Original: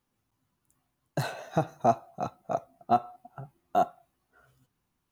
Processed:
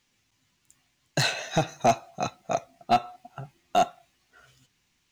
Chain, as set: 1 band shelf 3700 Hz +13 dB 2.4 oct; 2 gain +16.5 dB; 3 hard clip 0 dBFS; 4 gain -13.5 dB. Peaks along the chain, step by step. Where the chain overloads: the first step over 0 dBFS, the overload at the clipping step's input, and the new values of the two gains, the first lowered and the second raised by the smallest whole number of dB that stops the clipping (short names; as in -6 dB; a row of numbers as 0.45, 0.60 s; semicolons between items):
-9.0, +7.5, 0.0, -13.5 dBFS; step 2, 7.5 dB; step 2 +8.5 dB, step 4 -5.5 dB